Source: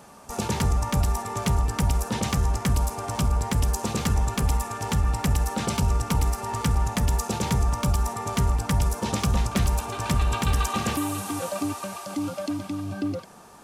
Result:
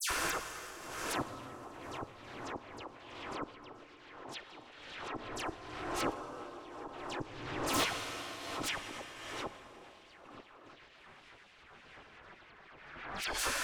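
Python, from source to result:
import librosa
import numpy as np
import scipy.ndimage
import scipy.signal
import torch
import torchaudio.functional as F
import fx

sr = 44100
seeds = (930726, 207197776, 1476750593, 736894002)

y = fx.over_compress(x, sr, threshold_db=-30.0, ratio=-1.0)
y = fx.low_shelf(y, sr, hz=270.0, db=8.5)
y = fx.fold_sine(y, sr, drive_db=18, ceiling_db=-9.5)
y = fx.high_shelf(y, sr, hz=4400.0, db=-11.0)
y = fx.spec_gate(y, sr, threshold_db=-15, keep='weak')
y = fx.gate_flip(y, sr, shuts_db=-15.0, range_db=-34)
y = fx.env_lowpass(y, sr, base_hz=2500.0, full_db=-29.5)
y = fx.rev_plate(y, sr, seeds[0], rt60_s=3.7, hf_ratio=0.9, predelay_ms=0, drr_db=9.5)
y = 10.0 ** (-30.0 / 20.0) * np.tanh(y / 10.0 ** (-30.0 / 20.0))
y = fx.dispersion(y, sr, late='lows', ms=102.0, hz=2500.0)
y = fx.pre_swell(y, sr, db_per_s=40.0)
y = y * librosa.db_to_amplitude(1.0)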